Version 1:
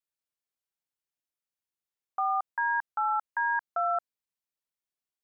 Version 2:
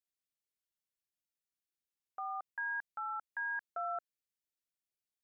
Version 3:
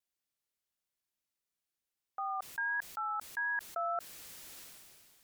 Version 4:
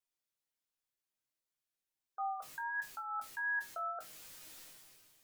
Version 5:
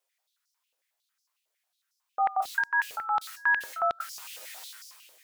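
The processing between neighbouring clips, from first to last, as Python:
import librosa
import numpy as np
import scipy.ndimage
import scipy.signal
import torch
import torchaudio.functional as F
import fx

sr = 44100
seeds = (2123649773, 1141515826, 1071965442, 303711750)

y1 = fx.peak_eq(x, sr, hz=960.0, db=-14.5, octaves=0.91)
y1 = y1 * 10.0 ** (-3.0 / 20.0)
y2 = fx.vibrato(y1, sr, rate_hz=1.5, depth_cents=31.0)
y2 = fx.sustainer(y2, sr, db_per_s=26.0)
y2 = y2 * 10.0 ** (3.0 / 20.0)
y3 = fx.spec_gate(y2, sr, threshold_db=-30, keep='strong')
y3 = fx.resonator_bank(y3, sr, root=44, chord='major', decay_s=0.21)
y3 = y3 * 10.0 ** (8.0 / 20.0)
y4 = fx.filter_held_highpass(y3, sr, hz=11.0, low_hz=530.0, high_hz=5200.0)
y4 = y4 * 10.0 ** (8.5 / 20.0)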